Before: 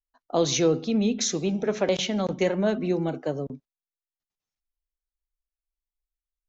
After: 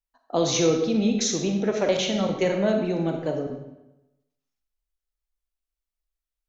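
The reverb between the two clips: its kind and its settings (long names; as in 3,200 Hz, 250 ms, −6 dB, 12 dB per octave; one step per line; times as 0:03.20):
comb and all-pass reverb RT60 0.95 s, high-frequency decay 0.85×, pre-delay 0 ms, DRR 3 dB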